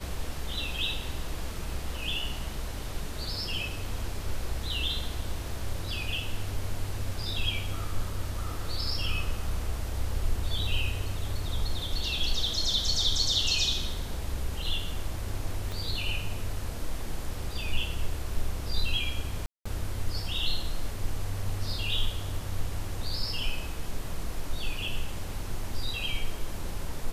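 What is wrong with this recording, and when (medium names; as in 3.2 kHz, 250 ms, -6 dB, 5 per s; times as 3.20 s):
15.72 s: pop
19.46–19.66 s: dropout 195 ms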